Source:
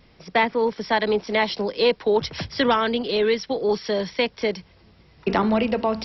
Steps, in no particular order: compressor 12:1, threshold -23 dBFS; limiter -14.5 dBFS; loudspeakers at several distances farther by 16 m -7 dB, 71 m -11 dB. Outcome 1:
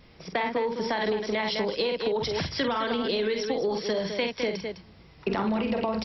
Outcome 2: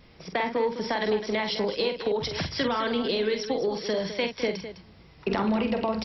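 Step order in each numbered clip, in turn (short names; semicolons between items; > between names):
loudspeakers at several distances > limiter > compressor; limiter > compressor > loudspeakers at several distances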